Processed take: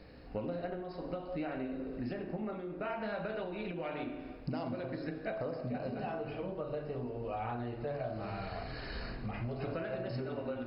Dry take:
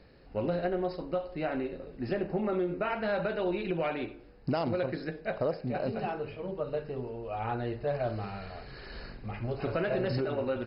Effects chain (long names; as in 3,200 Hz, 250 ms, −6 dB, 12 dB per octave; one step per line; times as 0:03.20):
on a send at −4 dB: convolution reverb RT60 1.1 s, pre-delay 3 ms
on the sum: downward compressor 6 to 1, threshold −37 dBFS, peak gain reduction 13.5 dB
notch filter 370 Hz, Q 12
level +2 dB